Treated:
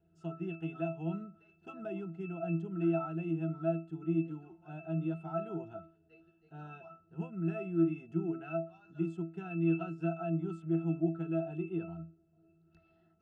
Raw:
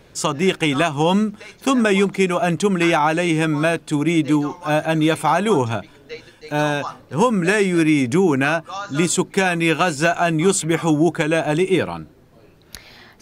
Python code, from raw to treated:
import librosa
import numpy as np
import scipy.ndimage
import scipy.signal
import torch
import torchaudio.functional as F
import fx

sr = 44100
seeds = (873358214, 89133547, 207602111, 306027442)

y = fx.peak_eq(x, sr, hz=74.0, db=-14.0, octaves=0.4)
y = fx.octave_resonator(y, sr, note='E', decay_s=0.29)
y = y * librosa.db_to_amplitude(-6.0)